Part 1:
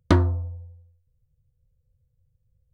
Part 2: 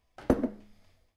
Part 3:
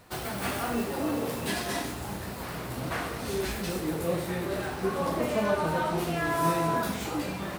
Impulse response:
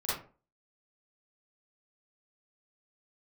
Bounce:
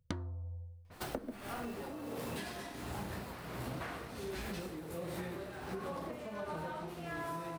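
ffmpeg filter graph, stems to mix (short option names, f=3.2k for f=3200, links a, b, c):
-filter_complex "[0:a]volume=-5dB[a];[1:a]adelay=850,volume=1dB[b];[2:a]acompressor=threshold=-34dB:ratio=4,tremolo=f=1.4:d=0.68,adynamicequalizer=threshold=0.00141:dfrequency=4600:dqfactor=0.7:tfrequency=4600:tqfactor=0.7:attack=5:release=100:ratio=0.375:range=2.5:mode=cutabove:tftype=highshelf,adelay=900,volume=1dB[c];[a][b][c]amix=inputs=3:normalize=0,acompressor=threshold=-37dB:ratio=12"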